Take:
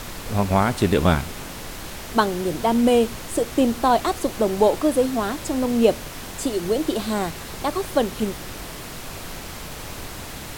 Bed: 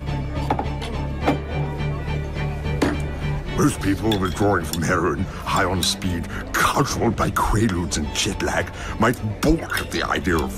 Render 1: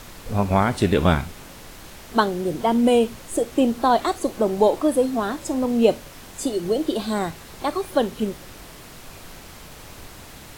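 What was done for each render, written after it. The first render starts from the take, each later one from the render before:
noise reduction from a noise print 7 dB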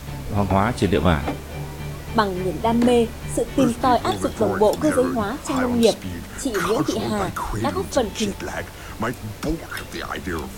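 mix in bed −7 dB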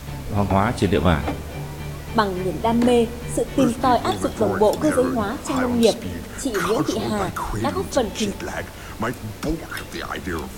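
feedback echo with a low-pass in the loop 69 ms, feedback 85%, low-pass 1,200 Hz, level −20.5 dB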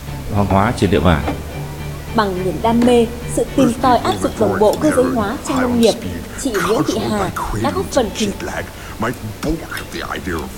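level +5 dB
brickwall limiter −1 dBFS, peak gain reduction 2.5 dB

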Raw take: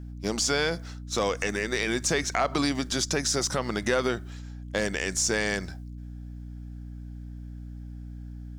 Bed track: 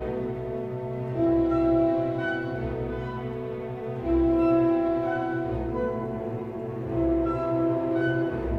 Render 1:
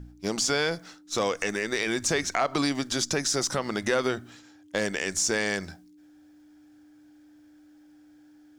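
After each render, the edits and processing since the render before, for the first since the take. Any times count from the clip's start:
hum removal 60 Hz, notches 4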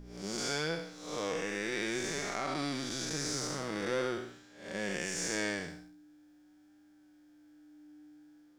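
spectrum smeared in time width 246 ms
flanger 0.44 Hz, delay 4.9 ms, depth 1.8 ms, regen +47%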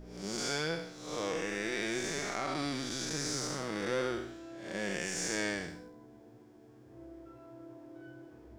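mix in bed track −26.5 dB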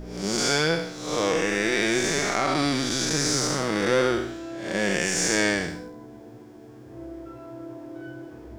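level +11.5 dB

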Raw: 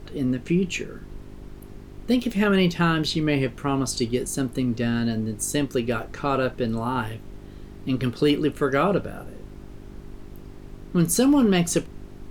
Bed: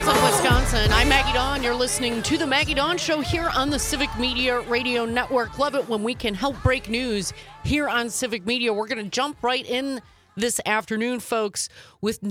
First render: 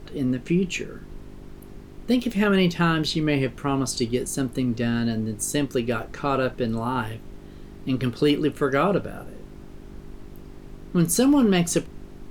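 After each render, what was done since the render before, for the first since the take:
hum removal 50 Hz, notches 2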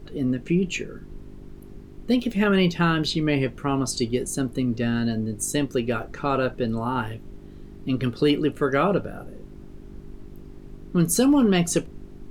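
broadband denoise 6 dB, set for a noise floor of −43 dBFS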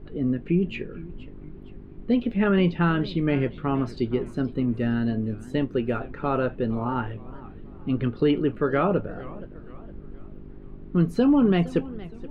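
high-frequency loss of the air 420 metres
feedback echo with a swinging delay time 469 ms, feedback 42%, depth 195 cents, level −18.5 dB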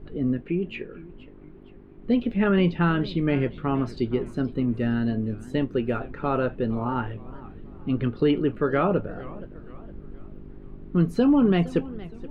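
0:00.41–0:02.04: bass and treble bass −8 dB, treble −7 dB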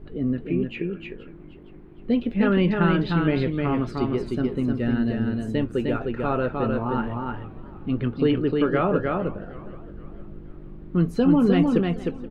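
single-tap delay 306 ms −3.5 dB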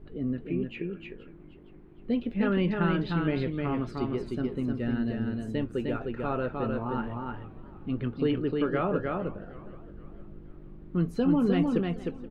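level −6 dB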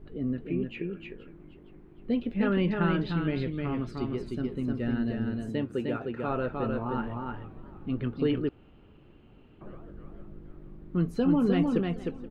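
0:03.11–0:04.68: parametric band 830 Hz −4.5 dB 2.2 octaves
0:05.49–0:06.28: high-pass filter 98 Hz
0:08.49–0:09.61: fill with room tone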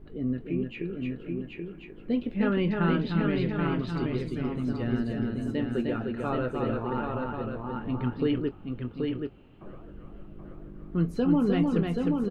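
double-tracking delay 24 ms −13 dB
single-tap delay 780 ms −4 dB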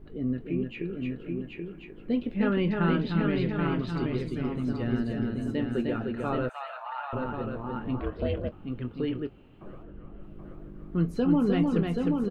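0:06.49–0:07.13: Chebyshev high-pass filter 640 Hz, order 6
0:08.00–0:08.52: ring modulation 200 Hz
0:09.83–0:10.23: high-frequency loss of the air 200 metres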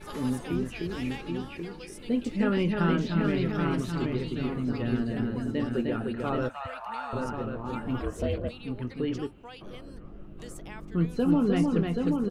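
mix in bed −23.5 dB

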